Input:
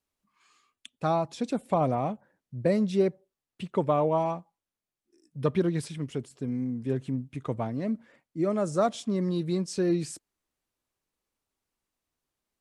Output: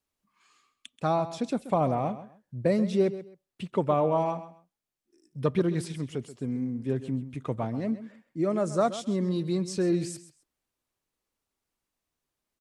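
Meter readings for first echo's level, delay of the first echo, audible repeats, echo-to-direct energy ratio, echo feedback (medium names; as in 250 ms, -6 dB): -14.0 dB, 132 ms, 2, -14.0 dB, 22%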